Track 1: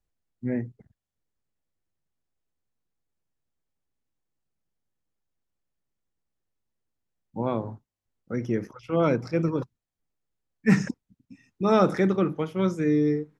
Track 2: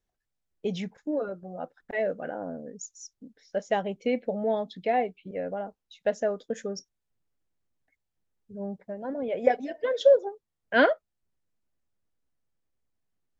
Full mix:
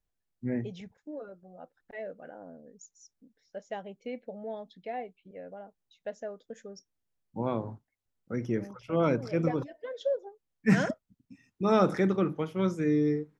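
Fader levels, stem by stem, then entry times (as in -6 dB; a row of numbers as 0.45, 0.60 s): -3.5, -11.5 dB; 0.00, 0.00 s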